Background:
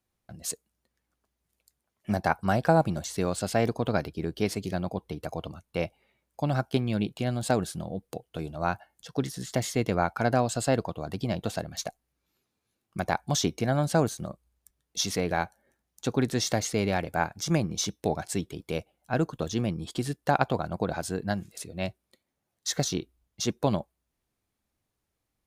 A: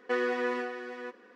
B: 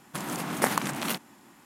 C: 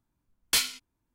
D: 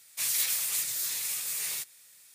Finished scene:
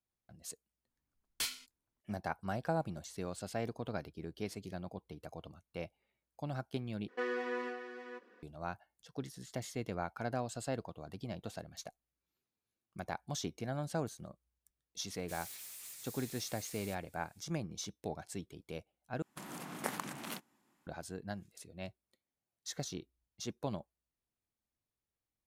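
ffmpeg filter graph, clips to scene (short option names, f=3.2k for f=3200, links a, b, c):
-filter_complex "[0:a]volume=-13dB[a];[4:a]asoftclip=type=tanh:threshold=-29.5dB[b];[2:a]agate=range=-7dB:threshold=-41dB:ratio=16:release=100:detection=peak[c];[a]asplit=3[d][e][f];[d]atrim=end=7.084[g];[1:a]atrim=end=1.35,asetpts=PTS-STARTPTS,volume=-7.5dB[h];[e]atrim=start=8.426:end=19.224[i];[c]atrim=end=1.65,asetpts=PTS-STARTPTS,volume=-13dB[j];[f]atrim=start=20.866[k];[3:a]atrim=end=1.14,asetpts=PTS-STARTPTS,volume=-12.5dB,afade=t=in:d=0.004:c=hsin,afade=t=out:st=1.136:d=0.004:c=hsin,adelay=870[l];[b]atrim=end=2.34,asetpts=PTS-STARTPTS,volume=-15.5dB,afade=t=in:d=0.004:c=hsin,afade=t=out:st=2.336:d=0.004:c=hsin,adelay=15110[m];[g][h]acrossfade=d=0.004:c1=hsin:c2=hsin[n];[n][i]acrossfade=d=0.004:c1=hsin:c2=hsin[o];[o][j]acrossfade=d=0.004:c1=hsin:c2=hsin[p];[p][k]acrossfade=d=0.004:c1=hsin:c2=hsin[q];[q][l][m]amix=inputs=3:normalize=0"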